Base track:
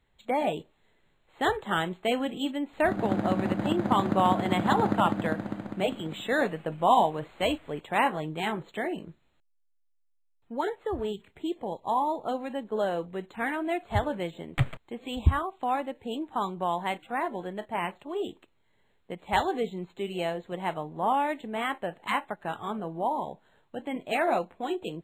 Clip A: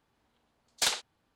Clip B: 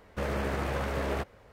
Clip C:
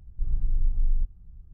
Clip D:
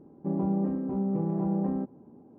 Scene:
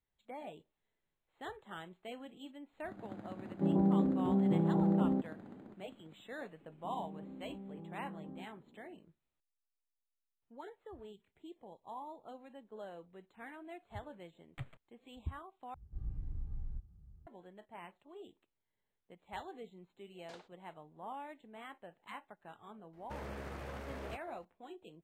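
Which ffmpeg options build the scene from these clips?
-filter_complex "[4:a]asplit=2[a][b];[0:a]volume=-19.5dB[c];[a]lowpass=1.1k[d];[b]acompressor=threshold=-33dB:ratio=6:attack=3.2:release=140:knee=1:detection=peak[e];[3:a]highpass=57[f];[1:a]bandpass=f=300:t=q:w=0.65:csg=0[g];[c]asplit=2[h][i];[h]atrim=end=15.744[j];[f]atrim=end=1.53,asetpts=PTS-STARTPTS,volume=-5.5dB[k];[i]atrim=start=17.266[l];[d]atrim=end=2.38,asetpts=PTS-STARTPTS,volume=-1.5dB,afade=t=in:d=0.004:c=hsin,afade=t=out:st=2.376:d=0.004:c=hsin,adelay=3360[m];[e]atrim=end=2.38,asetpts=PTS-STARTPTS,volume=-12dB,afade=t=in:d=0.004:c=hsin,afade=t=out:st=2.376:d=0.004:c=hsin,adelay=6600[n];[g]atrim=end=1.35,asetpts=PTS-STARTPTS,volume=-13.5dB,afade=t=in:d=0.004:c=hsin,afade=t=out:st=1.346:d=0.004:c=hsin,adelay=19470[o];[2:a]atrim=end=1.52,asetpts=PTS-STARTPTS,volume=-13.5dB,afade=t=in:d=0.004:c=hsin,afade=t=out:st=1.516:d=0.004:c=hsin,adelay=22930[p];[j][k]acrossfade=d=0.004:c1=hsin:c2=hsin[q];[q][l]acrossfade=d=0.004:c1=hsin:c2=hsin[r];[r][m][n][o][p]amix=inputs=5:normalize=0"

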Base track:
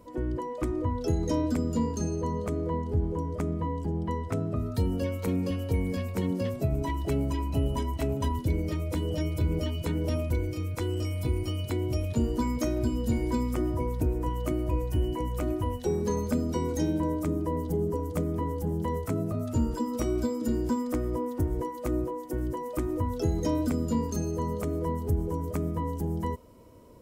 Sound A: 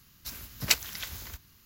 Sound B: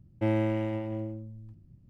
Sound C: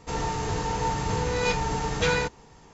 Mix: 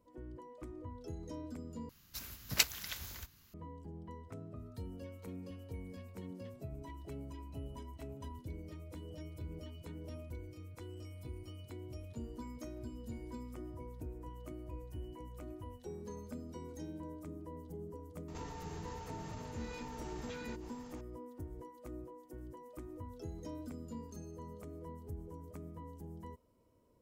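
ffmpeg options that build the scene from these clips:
-filter_complex "[0:a]volume=-18dB[a];[3:a]acompressor=threshold=-42dB:ratio=6:attack=3.2:release=140:knee=1:detection=peak[b];[a]asplit=2[c][d];[c]atrim=end=1.894[e];[1:a]atrim=end=1.65,asetpts=PTS-STARTPTS,volume=-5dB[f];[d]atrim=start=3.536[g];[b]atrim=end=2.73,asetpts=PTS-STARTPTS,volume=-3.5dB,afade=t=in:d=0.004:c=hsin,afade=t=out:st=2.726:d=0.004:c=hsin,adelay=806148S[h];[e][f]acrossfade=d=0.004:c1=hsin:c2=hsin[i];[i][g]acrossfade=d=0.004:c1=hsin:c2=hsin[j];[j][h]amix=inputs=2:normalize=0"

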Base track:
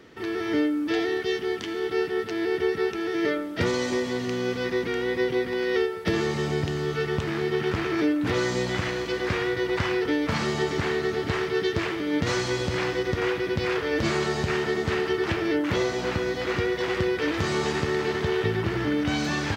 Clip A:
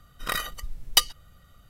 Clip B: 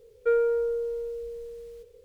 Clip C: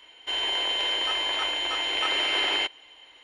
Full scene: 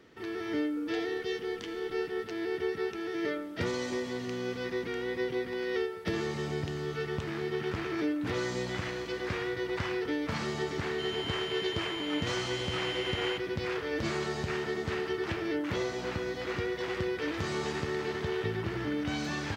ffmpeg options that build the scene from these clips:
-filter_complex "[0:a]volume=-7.5dB[a];[2:a]acompressor=threshold=-34dB:ratio=6:attack=3.2:release=140:knee=1:detection=peak,atrim=end=2.04,asetpts=PTS-STARTPTS,volume=-12dB,afade=t=in:d=0.004:c=hsin,afade=t=out:st=2.036:d=0.004:c=hsin,adelay=510[b];[3:a]atrim=end=3.23,asetpts=PTS-STARTPTS,volume=-12dB,afade=t=in:d=0.004:c=hsin,afade=t=out:st=3.226:d=0.004:c=hsin,adelay=10710[c];[a][b][c]amix=inputs=3:normalize=0"

